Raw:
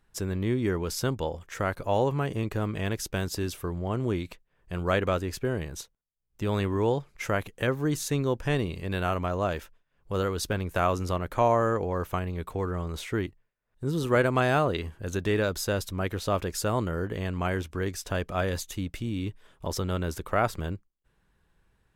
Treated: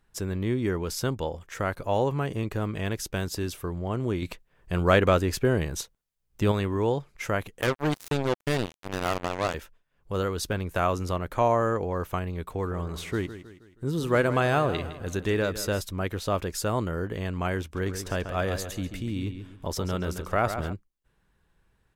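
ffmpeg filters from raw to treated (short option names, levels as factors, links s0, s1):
-filter_complex "[0:a]asettb=1/sr,asplit=3[s0][s1][s2];[s0]atrim=end=4.224[s3];[s1]atrim=start=4.22:end=6.52,asetpts=PTS-STARTPTS,afade=t=in:d=0.004:c=qsin,afade=t=out:st=2.296:d=0.004:c=qsin,acontrast=46[s4];[s2]atrim=start=6.516[s5];[s3][s4]acrossfade=d=0.004:c1=hsin:c2=qsin[s6];[s6][s5]acrossfade=d=0.004:c1=qsin:c2=hsin,asettb=1/sr,asplit=3[s7][s8][s9];[s7]atrim=end=7.614[s10];[s8]atrim=start=7.61:end=9.54,asetpts=PTS-STARTPTS,afade=t=in:d=0.004:c=qsin,afade=t=out:st=1.926:d=0.004:c=qsin,acrusher=bits=3:mix=0:aa=0.5[s11];[s9]atrim=start=9.536[s12];[s10][s11]acrossfade=d=0.004:c1=hsin:c2=qsin[s13];[s13][s12]acrossfade=d=0.004:c1=qsin:c2=hsin,asettb=1/sr,asplit=3[s14][s15][s16];[s14]atrim=end=12.454[s17];[s15]atrim=start=12.45:end=15.81,asetpts=PTS-STARTPTS,afade=t=in:d=0.004:c=qsin,afade=t=out:st=3.356:d=0.004:c=qsin,aecho=1:1:159|318|477|636:0.224|0.101|0.0453|0.0204,atrim=end_sample=148176[s18];[s16]atrim=start=15.806[s19];[s17][s18]acrossfade=d=0.004:c1=hsin:c2=qsin[s20];[s20][s19]acrossfade=d=0.004:c1=qsin:c2=hsin,asplit=3[s21][s22][s23];[s21]afade=t=out:st=17.75:d=0.02[s24];[s22]asplit=2[s25][s26];[s26]adelay=137,lowpass=f=4700:p=1,volume=0.376,asplit=2[s27][s28];[s28]adelay=137,lowpass=f=4700:p=1,volume=0.38,asplit=2[s29][s30];[s30]adelay=137,lowpass=f=4700:p=1,volume=0.38,asplit=2[s31][s32];[s32]adelay=137,lowpass=f=4700:p=1,volume=0.38[s33];[s25][s27][s29][s31][s33]amix=inputs=5:normalize=0,afade=t=in:st=17.75:d=0.02,afade=t=out:st=20.72:d=0.02[s34];[s23]afade=t=in:st=20.72:d=0.02[s35];[s24][s34][s35]amix=inputs=3:normalize=0"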